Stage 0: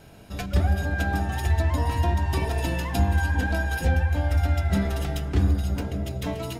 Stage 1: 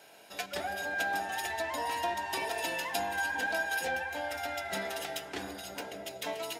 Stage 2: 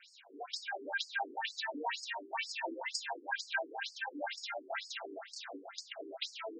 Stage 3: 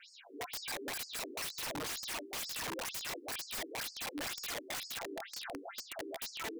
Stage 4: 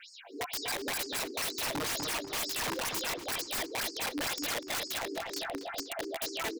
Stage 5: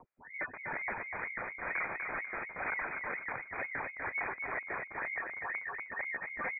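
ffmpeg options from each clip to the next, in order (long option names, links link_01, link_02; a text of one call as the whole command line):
ffmpeg -i in.wav -af "highpass=630,equalizer=frequency=1200:width=5.3:gain=-8" out.wav
ffmpeg -i in.wav -af "equalizer=frequency=125:width_type=o:width=1:gain=-11,equalizer=frequency=500:width_type=o:width=1:gain=-5,equalizer=frequency=1000:width_type=o:width=1:gain=-4,equalizer=frequency=2000:width_type=o:width=1:gain=-3,equalizer=frequency=8000:width_type=o:width=1:gain=-6,afftfilt=real='re*between(b*sr/1024,310*pow(6300/310,0.5+0.5*sin(2*PI*2.1*pts/sr))/1.41,310*pow(6300/310,0.5+0.5*sin(2*PI*2.1*pts/sr))*1.41)':imag='im*between(b*sr/1024,310*pow(6300/310,0.5+0.5*sin(2*PI*2.1*pts/sr))/1.41,310*pow(6300/310,0.5+0.5*sin(2*PI*2.1*pts/sr))*1.41)':win_size=1024:overlap=0.75,volume=7.5dB" out.wav
ffmpeg -i in.wav -af "aeval=exprs='(mod(75*val(0)+1,2)-1)/75':channel_layout=same,volume=3dB" out.wav
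ffmpeg -i in.wav -filter_complex "[0:a]asplit=2[link_01][link_02];[link_02]adelay=246,lowpass=frequency=2200:poles=1,volume=-4dB,asplit=2[link_03][link_04];[link_04]adelay=246,lowpass=frequency=2200:poles=1,volume=0.34,asplit=2[link_05][link_06];[link_06]adelay=246,lowpass=frequency=2200:poles=1,volume=0.34,asplit=2[link_07][link_08];[link_08]adelay=246,lowpass=frequency=2200:poles=1,volume=0.34[link_09];[link_01][link_03][link_05][link_07][link_09]amix=inputs=5:normalize=0,volume=5.5dB" out.wav
ffmpeg -i in.wav -af "lowpass=frequency=2100:width_type=q:width=0.5098,lowpass=frequency=2100:width_type=q:width=0.6013,lowpass=frequency=2100:width_type=q:width=0.9,lowpass=frequency=2100:width_type=q:width=2.563,afreqshift=-2500" out.wav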